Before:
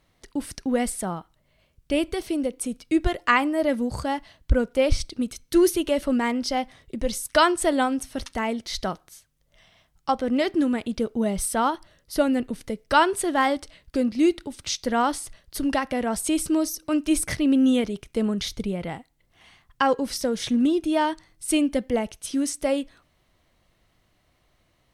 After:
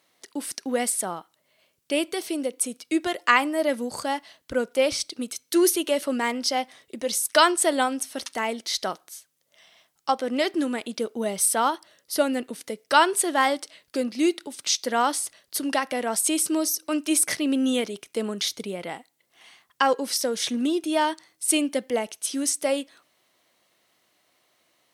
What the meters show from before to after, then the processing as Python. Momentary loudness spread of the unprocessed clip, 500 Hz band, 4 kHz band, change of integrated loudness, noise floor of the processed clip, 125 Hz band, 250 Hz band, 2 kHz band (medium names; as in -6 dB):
12 LU, -0.5 dB, +3.5 dB, 0.0 dB, -71 dBFS, under -10 dB, -4.0 dB, +1.5 dB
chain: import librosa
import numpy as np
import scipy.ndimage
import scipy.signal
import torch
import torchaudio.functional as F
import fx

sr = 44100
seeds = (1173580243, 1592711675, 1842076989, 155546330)

y = scipy.signal.sosfilt(scipy.signal.butter(2, 310.0, 'highpass', fs=sr, output='sos'), x)
y = fx.high_shelf(y, sr, hz=3800.0, db=7.5)